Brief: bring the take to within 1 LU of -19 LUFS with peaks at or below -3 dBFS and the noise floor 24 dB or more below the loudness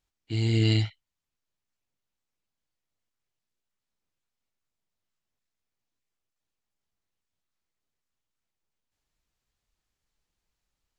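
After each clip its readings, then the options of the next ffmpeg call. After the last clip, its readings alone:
loudness -26.5 LUFS; peak level -11.5 dBFS; loudness target -19.0 LUFS
-> -af "volume=2.37"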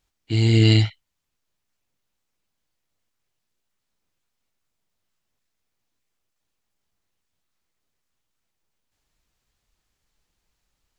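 loudness -19.0 LUFS; peak level -4.0 dBFS; noise floor -79 dBFS

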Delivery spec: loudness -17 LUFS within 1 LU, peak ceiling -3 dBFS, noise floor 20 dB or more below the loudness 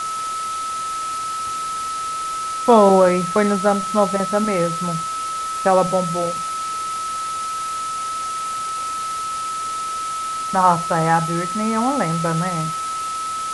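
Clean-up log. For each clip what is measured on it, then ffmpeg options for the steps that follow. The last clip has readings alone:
steady tone 1.3 kHz; tone level -23 dBFS; noise floor -26 dBFS; noise floor target -41 dBFS; loudness -20.5 LUFS; peak level -1.5 dBFS; loudness target -17.0 LUFS
-> -af "bandreject=f=1300:w=30"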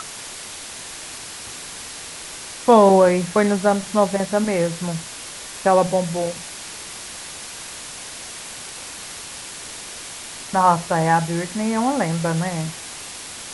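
steady tone not found; noise floor -35 dBFS; noise floor target -42 dBFS
-> -af "afftdn=nr=7:nf=-35"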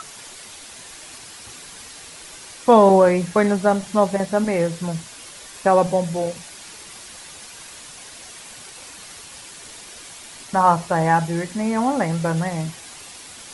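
noise floor -40 dBFS; loudness -19.5 LUFS; peak level -2.5 dBFS; loudness target -17.0 LUFS
-> -af "volume=1.33,alimiter=limit=0.708:level=0:latency=1"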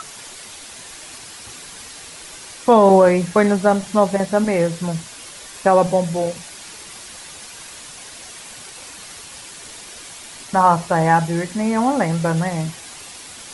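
loudness -17.5 LUFS; peak level -3.0 dBFS; noise floor -38 dBFS

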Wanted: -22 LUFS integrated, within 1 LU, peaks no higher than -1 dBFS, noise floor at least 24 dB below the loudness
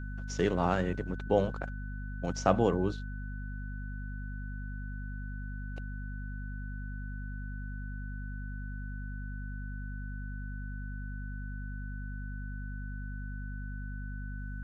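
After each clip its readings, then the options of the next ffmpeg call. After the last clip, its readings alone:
hum 50 Hz; highest harmonic 250 Hz; hum level -36 dBFS; steady tone 1.5 kHz; tone level -48 dBFS; loudness -36.5 LUFS; peak level -10.0 dBFS; loudness target -22.0 LUFS
-> -af "bandreject=f=50:t=h:w=4,bandreject=f=100:t=h:w=4,bandreject=f=150:t=h:w=4,bandreject=f=200:t=h:w=4,bandreject=f=250:t=h:w=4"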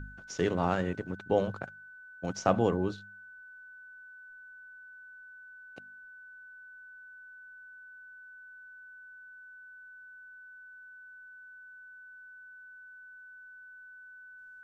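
hum not found; steady tone 1.5 kHz; tone level -48 dBFS
-> -af "bandreject=f=1500:w=30"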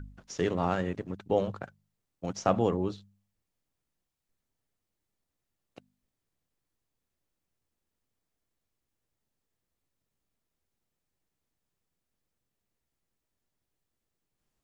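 steady tone not found; loudness -31.0 LUFS; peak level -11.0 dBFS; loudness target -22.0 LUFS
-> -af "volume=2.82"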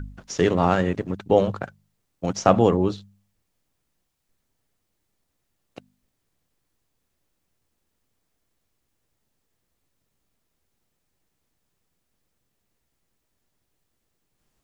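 loudness -22.0 LUFS; peak level -2.0 dBFS; noise floor -76 dBFS

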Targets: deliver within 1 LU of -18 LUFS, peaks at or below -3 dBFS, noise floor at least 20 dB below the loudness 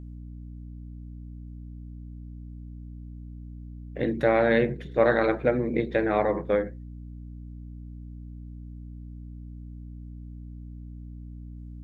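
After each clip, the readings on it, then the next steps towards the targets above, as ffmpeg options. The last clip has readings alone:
hum 60 Hz; highest harmonic 300 Hz; hum level -38 dBFS; loudness -24.5 LUFS; peak level -8.0 dBFS; loudness target -18.0 LUFS
-> -af "bandreject=f=60:t=h:w=6,bandreject=f=120:t=h:w=6,bandreject=f=180:t=h:w=6,bandreject=f=240:t=h:w=6,bandreject=f=300:t=h:w=6"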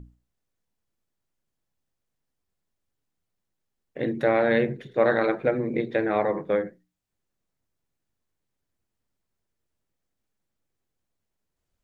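hum not found; loudness -24.5 LUFS; peak level -8.0 dBFS; loudness target -18.0 LUFS
-> -af "volume=2.11,alimiter=limit=0.708:level=0:latency=1"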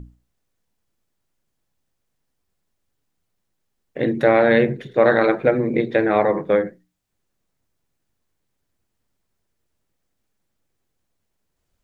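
loudness -18.5 LUFS; peak level -3.0 dBFS; noise floor -75 dBFS

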